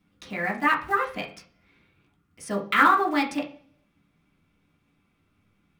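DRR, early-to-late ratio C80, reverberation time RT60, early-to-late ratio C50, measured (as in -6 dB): -2.5 dB, 16.5 dB, 0.45 s, 11.0 dB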